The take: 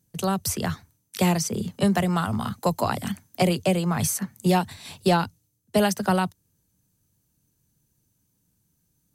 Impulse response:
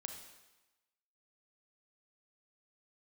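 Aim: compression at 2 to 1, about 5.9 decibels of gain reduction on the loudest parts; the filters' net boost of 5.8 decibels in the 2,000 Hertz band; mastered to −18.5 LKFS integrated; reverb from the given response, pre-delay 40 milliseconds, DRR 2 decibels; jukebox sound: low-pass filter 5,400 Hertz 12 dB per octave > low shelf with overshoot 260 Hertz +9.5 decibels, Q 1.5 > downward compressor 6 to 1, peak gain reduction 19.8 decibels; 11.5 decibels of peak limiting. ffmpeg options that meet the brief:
-filter_complex "[0:a]equalizer=frequency=2000:width_type=o:gain=8,acompressor=threshold=-26dB:ratio=2,alimiter=limit=-22.5dB:level=0:latency=1,asplit=2[link_01][link_02];[1:a]atrim=start_sample=2205,adelay=40[link_03];[link_02][link_03]afir=irnorm=-1:irlink=0,volume=1dB[link_04];[link_01][link_04]amix=inputs=2:normalize=0,lowpass=5400,lowshelf=frequency=260:width_type=q:width=1.5:gain=9.5,acompressor=threshold=-33dB:ratio=6,volume=18dB"

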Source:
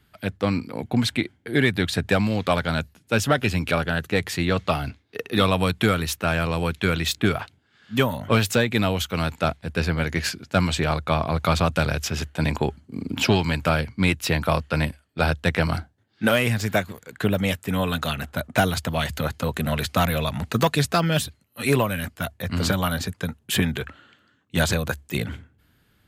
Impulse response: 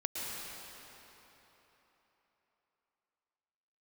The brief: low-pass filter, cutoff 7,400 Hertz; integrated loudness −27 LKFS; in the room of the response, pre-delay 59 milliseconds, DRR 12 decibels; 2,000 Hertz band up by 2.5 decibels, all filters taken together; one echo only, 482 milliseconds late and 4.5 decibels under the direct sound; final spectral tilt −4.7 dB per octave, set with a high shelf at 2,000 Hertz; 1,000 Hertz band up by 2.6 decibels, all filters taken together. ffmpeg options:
-filter_complex "[0:a]lowpass=7400,equalizer=frequency=1000:width_type=o:gain=3.5,highshelf=frequency=2000:gain=-6.5,equalizer=frequency=2000:width_type=o:gain=6,aecho=1:1:482:0.596,asplit=2[link_01][link_02];[1:a]atrim=start_sample=2205,adelay=59[link_03];[link_02][link_03]afir=irnorm=-1:irlink=0,volume=-16dB[link_04];[link_01][link_04]amix=inputs=2:normalize=0,volume=-5dB"

